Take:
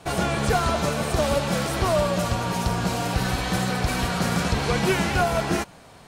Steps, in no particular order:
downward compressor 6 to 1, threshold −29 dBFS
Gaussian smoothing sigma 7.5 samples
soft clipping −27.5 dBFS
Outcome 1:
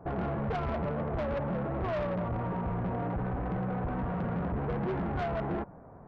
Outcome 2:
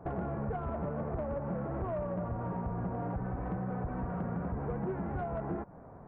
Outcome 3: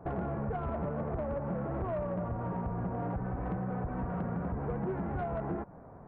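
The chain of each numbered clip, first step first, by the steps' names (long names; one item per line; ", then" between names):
Gaussian smoothing, then soft clipping, then downward compressor
downward compressor, then Gaussian smoothing, then soft clipping
Gaussian smoothing, then downward compressor, then soft clipping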